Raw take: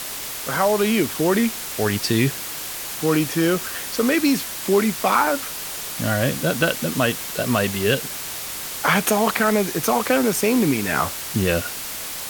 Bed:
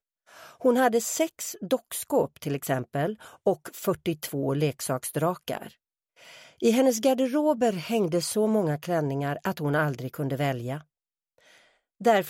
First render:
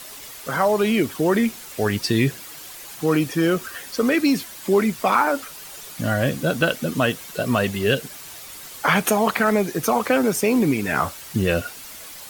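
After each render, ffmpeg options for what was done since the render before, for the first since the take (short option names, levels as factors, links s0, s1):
-af "afftdn=nr=10:nf=-31"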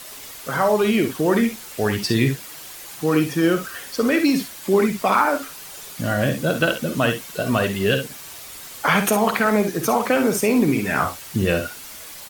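-af "aecho=1:1:52|67:0.335|0.266"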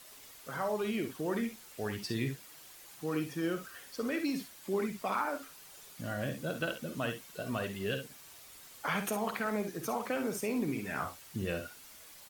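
-af "volume=0.168"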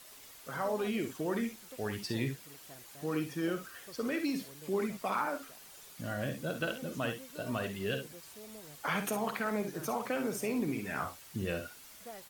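-filter_complex "[1:a]volume=0.0422[s0];[0:a][s0]amix=inputs=2:normalize=0"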